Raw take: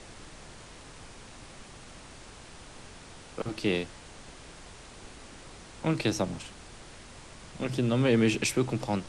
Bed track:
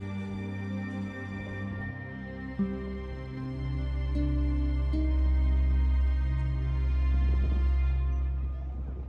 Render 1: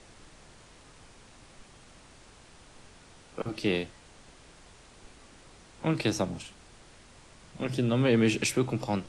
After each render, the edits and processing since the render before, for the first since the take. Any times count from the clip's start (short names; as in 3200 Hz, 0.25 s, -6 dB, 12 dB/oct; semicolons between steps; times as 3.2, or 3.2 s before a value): noise print and reduce 6 dB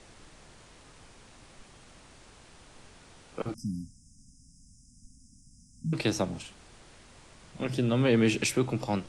3.54–5.93 brick-wall FIR band-stop 280–4900 Hz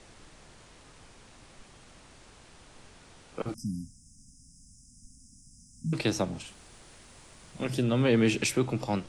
3.47–5.97 high shelf 8900 Hz -> 4900 Hz +7 dB; 6.47–7.83 high shelf 9000 Hz +11 dB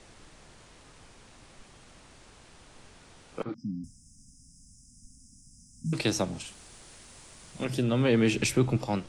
3.43–3.84 speaker cabinet 150–3800 Hz, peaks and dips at 280 Hz +4 dB, 680 Hz -8 dB, 2800 Hz -9 dB; 5.85–7.65 bell 8600 Hz +4.5 dB 2.2 oct; 8.36–8.77 low shelf 160 Hz +9.5 dB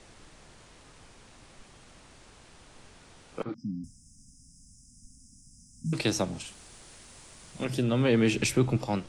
nothing audible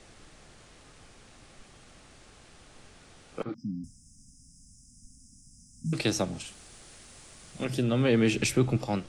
notch 960 Hz, Q 11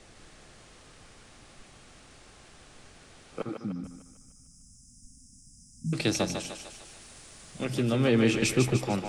thinning echo 0.15 s, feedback 55%, high-pass 330 Hz, level -5.5 dB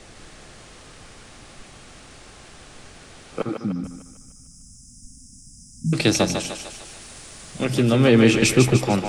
gain +8.5 dB